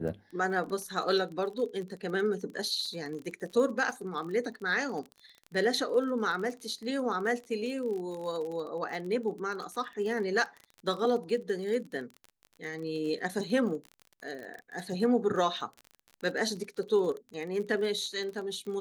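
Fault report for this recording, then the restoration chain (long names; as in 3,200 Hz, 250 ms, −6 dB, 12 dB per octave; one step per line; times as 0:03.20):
surface crackle 33 per second −37 dBFS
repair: click removal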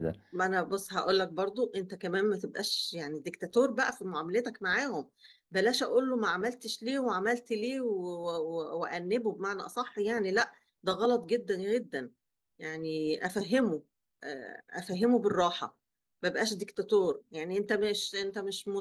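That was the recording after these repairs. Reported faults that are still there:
none of them is left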